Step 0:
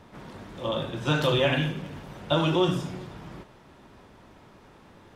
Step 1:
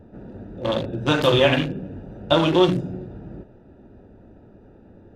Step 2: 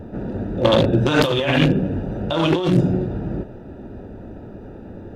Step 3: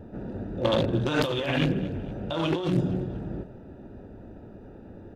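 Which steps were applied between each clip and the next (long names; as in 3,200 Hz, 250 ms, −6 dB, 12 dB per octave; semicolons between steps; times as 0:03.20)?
adaptive Wiener filter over 41 samples; parametric band 150 Hz −9.5 dB 0.21 octaves; level +7.5 dB
compressor whose output falls as the input rises −24 dBFS, ratio −1; level +7.5 dB
repeating echo 233 ms, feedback 39%, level −18 dB; level −8.5 dB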